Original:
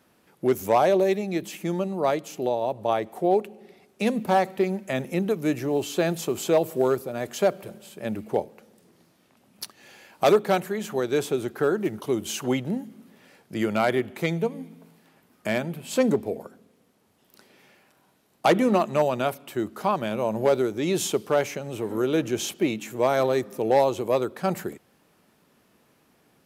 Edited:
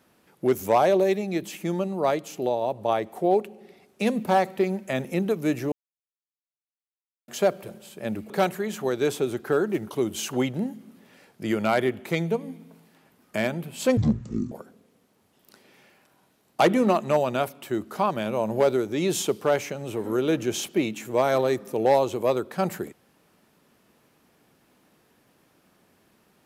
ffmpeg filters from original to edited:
-filter_complex "[0:a]asplit=6[s0][s1][s2][s3][s4][s5];[s0]atrim=end=5.72,asetpts=PTS-STARTPTS,afade=t=out:st=5.716:d=0.004:c=hsin[s6];[s1]atrim=start=5.72:end=7.28,asetpts=PTS-STARTPTS,volume=0[s7];[s2]atrim=start=7.28:end=8.302,asetpts=PTS-STARTPTS,afade=t=in:d=0.004:c=hsin[s8];[s3]atrim=start=10.408:end=16.084[s9];[s4]atrim=start=16.08:end=16.37,asetpts=PTS-STARTPTS,asetrate=23373,aresample=44100,atrim=end_sample=24130,asetpts=PTS-STARTPTS[s10];[s5]atrim=start=16.366[s11];[s6][s7][s8]concat=n=3:v=0:a=1[s12];[s12][s9]acrossfade=d=0.004:c1=hsin:c2=hsin[s13];[s13][s10]acrossfade=d=0.004:c1=hsin:c2=hsin[s14];[s14][s11]acrossfade=d=0.004:c1=hsin:c2=hsin"

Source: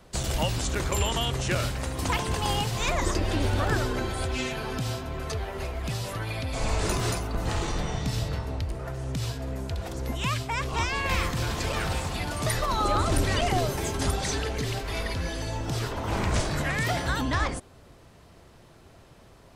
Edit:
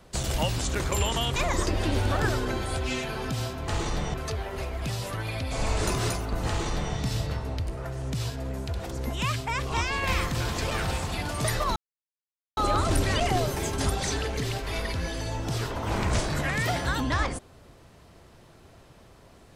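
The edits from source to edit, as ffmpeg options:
-filter_complex "[0:a]asplit=5[s0][s1][s2][s3][s4];[s0]atrim=end=1.362[s5];[s1]atrim=start=2.838:end=5.162[s6];[s2]atrim=start=7.498:end=7.962[s7];[s3]atrim=start=5.158:end=12.78,asetpts=PTS-STARTPTS,afade=t=out:st=7.618:d=0.004:c=hsin,apad=pad_dur=0.81[s8];[s4]atrim=start=12.78,asetpts=PTS-STARTPTS,afade=t=in:d=0.004:c=hsin[s9];[s5][s6]acrossfade=d=0.004:c1=hsin:c2=hsin[s10];[s10][s7]acrossfade=d=0.004:c1=hsin:c2=hsin[s11];[s8][s9]concat=n=2:v=0:a=1[s12];[s11][s12]acrossfade=d=0.004:c1=hsin:c2=hsin"

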